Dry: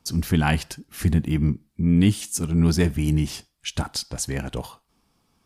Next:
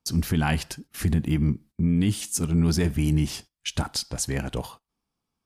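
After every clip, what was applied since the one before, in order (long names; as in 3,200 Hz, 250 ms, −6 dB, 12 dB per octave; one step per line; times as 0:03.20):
noise gate −44 dBFS, range −16 dB
brickwall limiter −13.5 dBFS, peak gain reduction 6.5 dB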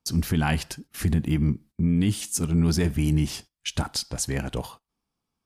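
no processing that can be heard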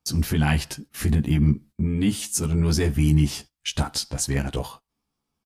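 double-tracking delay 14 ms −2 dB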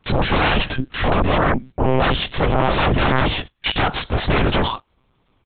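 sine wavefolder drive 19 dB, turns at −8.5 dBFS
one-pitch LPC vocoder at 8 kHz 130 Hz
level −4.5 dB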